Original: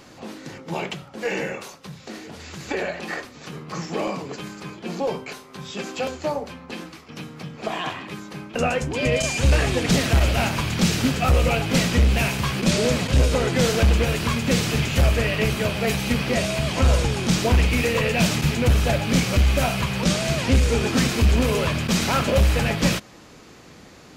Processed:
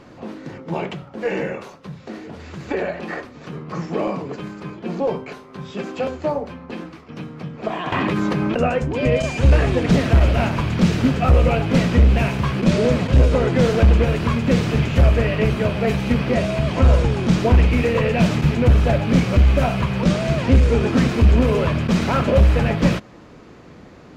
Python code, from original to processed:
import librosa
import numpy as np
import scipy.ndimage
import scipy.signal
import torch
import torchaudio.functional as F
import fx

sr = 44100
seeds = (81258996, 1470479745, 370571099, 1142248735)

y = fx.lowpass(x, sr, hz=1200.0, slope=6)
y = fx.notch(y, sr, hz=800.0, q=20.0)
y = fx.env_flatten(y, sr, amount_pct=100, at=(7.92, 8.57))
y = F.gain(torch.from_numpy(y), 4.5).numpy()